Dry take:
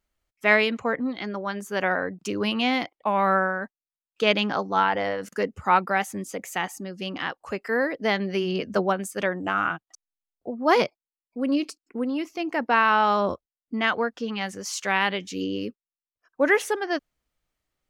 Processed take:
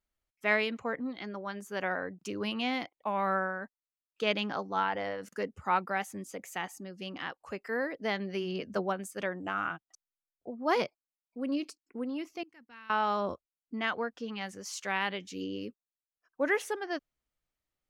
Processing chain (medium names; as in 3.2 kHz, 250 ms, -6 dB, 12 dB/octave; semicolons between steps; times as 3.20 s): 12.43–12.90 s: amplifier tone stack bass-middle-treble 6-0-2; trim -8.5 dB